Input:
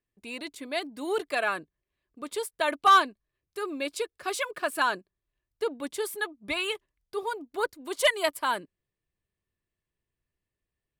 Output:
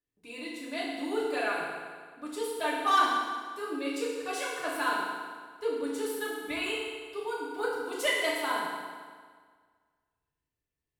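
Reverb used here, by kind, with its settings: FDN reverb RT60 1.7 s, low-frequency decay 1×, high-frequency decay 0.85×, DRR -7 dB; gain -10 dB

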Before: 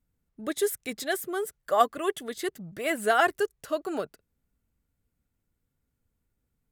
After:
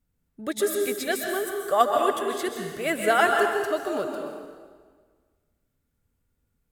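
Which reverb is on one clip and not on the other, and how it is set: plate-style reverb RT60 1.6 s, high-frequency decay 0.85×, pre-delay 0.115 s, DRR 2 dB; gain +1.5 dB

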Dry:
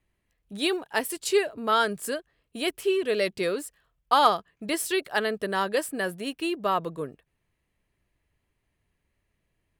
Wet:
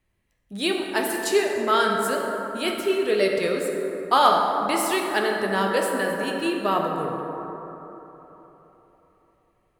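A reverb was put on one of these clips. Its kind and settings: plate-style reverb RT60 3.7 s, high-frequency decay 0.35×, DRR 0 dB; gain +1 dB

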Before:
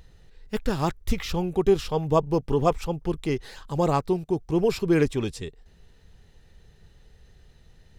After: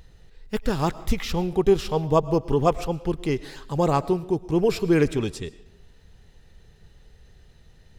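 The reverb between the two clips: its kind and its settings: digital reverb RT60 0.71 s, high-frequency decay 0.85×, pre-delay 70 ms, DRR 17 dB; gain +1.5 dB

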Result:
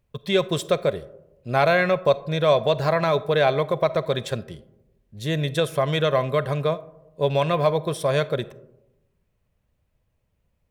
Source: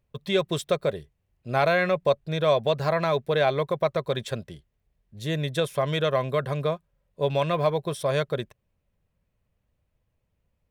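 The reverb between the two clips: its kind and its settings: digital reverb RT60 0.96 s, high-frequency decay 0.3×, pre-delay 5 ms, DRR 16.5 dB; gain +3 dB

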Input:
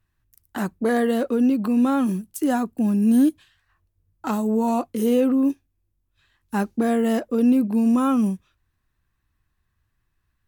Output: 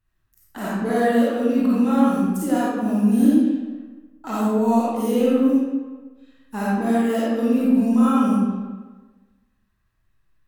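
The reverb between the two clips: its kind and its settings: digital reverb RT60 1.3 s, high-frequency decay 0.7×, pre-delay 10 ms, DRR -8.5 dB; gain -6.5 dB

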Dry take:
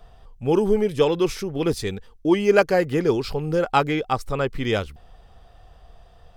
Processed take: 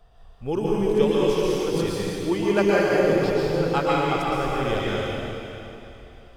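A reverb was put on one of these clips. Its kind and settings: plate-style reverb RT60 3 s, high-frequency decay 1×, pre-delay 0.105 s, DRR -6 dB; gain -7 dB

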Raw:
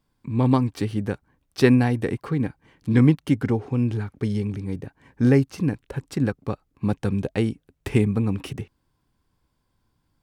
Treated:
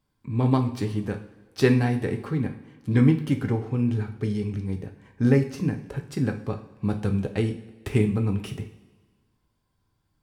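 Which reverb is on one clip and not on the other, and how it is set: two-slope reverb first 0.41 s, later 1.5 s, from -15 dB, DRR 4.5 dB; gain -3.5 dB

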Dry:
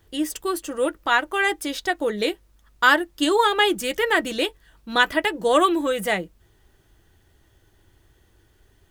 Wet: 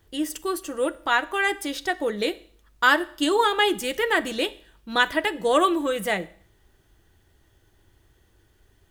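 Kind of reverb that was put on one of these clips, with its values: Schroeder reverb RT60 0.55 s, combs from 28 ms, DRR 17 dB; gain -2 dB

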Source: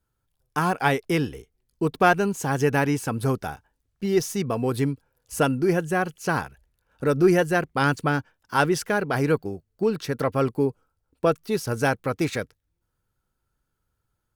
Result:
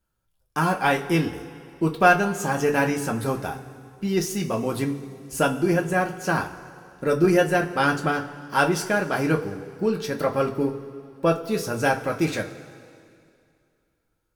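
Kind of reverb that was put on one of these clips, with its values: two-slope reverb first 0.23 s, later 2.4 s, from -19 dB, DRR 0.5 dB; gain -1.5 dB

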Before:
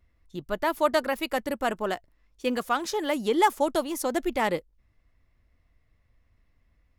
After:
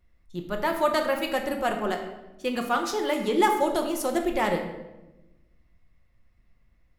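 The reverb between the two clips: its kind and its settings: shoebox room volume 470 m³, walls mixed, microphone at 0.96 m; gain -1 dB

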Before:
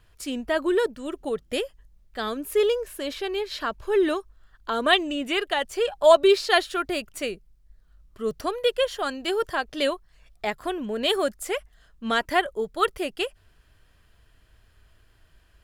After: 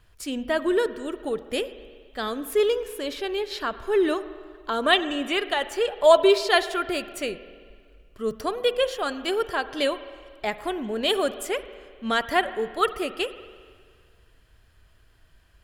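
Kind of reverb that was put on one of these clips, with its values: spring tank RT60 1.9 s, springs 45/49 ms, chirp 75 ms, DRR 12.5 dB

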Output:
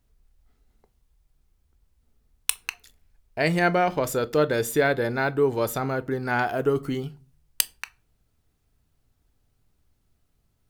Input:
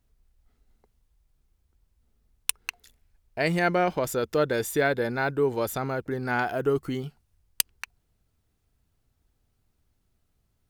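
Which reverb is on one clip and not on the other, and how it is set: shoebox room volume 190 m³, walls furnished, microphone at 0.3 m; gain +2 dB

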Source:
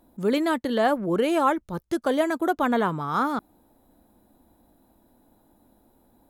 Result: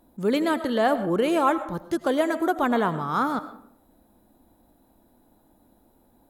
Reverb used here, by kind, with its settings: digital reverb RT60 0.63 s, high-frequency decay 0.55×, pre-delay 60 ms, DRR 12 dB

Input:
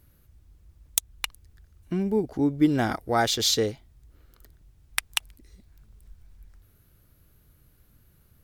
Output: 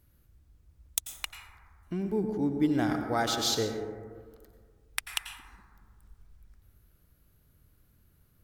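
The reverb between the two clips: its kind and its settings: plate-style reverb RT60 1.8 s, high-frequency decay 0.25×, pre-delay 80 ms, DRR 5 dB; gain -6 dB

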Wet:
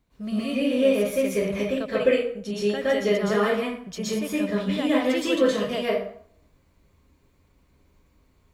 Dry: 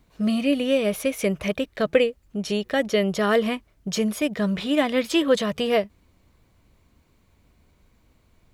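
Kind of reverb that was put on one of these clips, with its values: plate-style reverb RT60 0.59 s, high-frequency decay 0.7×, pre-delay 0.105 s, DRR -8.5 dB; gain -10.5 dB

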